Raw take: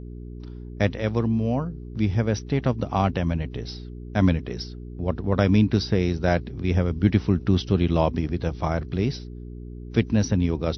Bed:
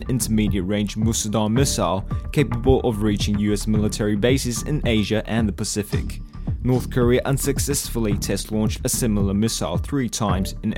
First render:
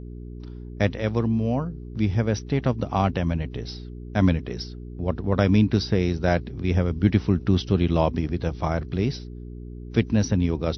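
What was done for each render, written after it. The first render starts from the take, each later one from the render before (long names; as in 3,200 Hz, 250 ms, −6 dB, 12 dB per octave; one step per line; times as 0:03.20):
no processing that can be heard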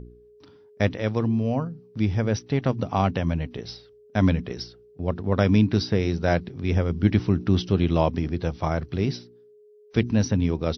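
hum removal 60 Hz, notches 6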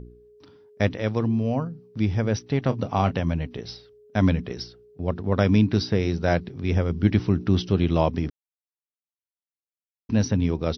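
0:02.66–0:03.20: double-tracking delay 29 ms −13 dB
0:08.30–0:10.09: silence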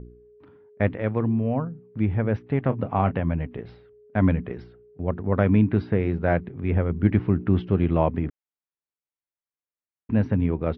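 low-pass filter 2,300 Hz 24 dB per octave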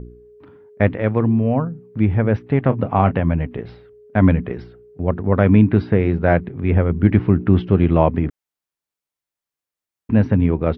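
level +6.5 dB
brickwall limiter −1 dBFS, peak gain reduction 2 dB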